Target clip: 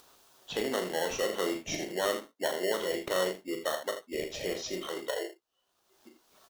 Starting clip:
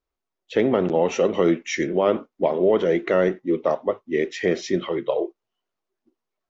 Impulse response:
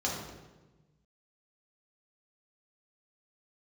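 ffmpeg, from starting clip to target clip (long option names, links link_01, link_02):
-filter_complex "[0:a]highpass=frequency=1100:poles=1,acrossover=split=2400[link_01][link_02];[link_01]acrusher=samples=18:mix=1:aa=0.000001[link_03];[link_03][link_02]amix=inputs=2:normalize=0,acompressor=mode=upward:threshold=-30dB:ratio=2.5,aecho=1:1:38|80:0.422|0.316,volume=-4.5dB"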